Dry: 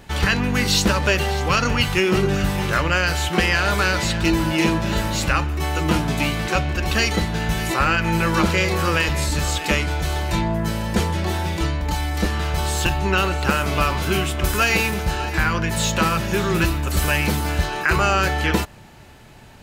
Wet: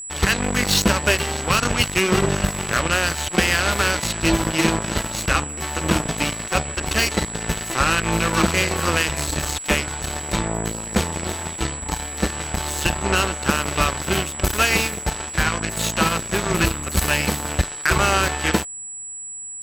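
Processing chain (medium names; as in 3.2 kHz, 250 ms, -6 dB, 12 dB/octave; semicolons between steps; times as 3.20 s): Chebyshev shaper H 5 -21 dB, 7 -13 dB, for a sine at -6 dBFS; whistle 7.8 kHz -31 dBFS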